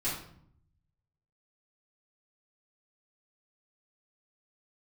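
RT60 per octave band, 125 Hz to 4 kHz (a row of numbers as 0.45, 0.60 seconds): 1.3, 0.90, 0.65, 0.60, 0.50, 0.45 seconds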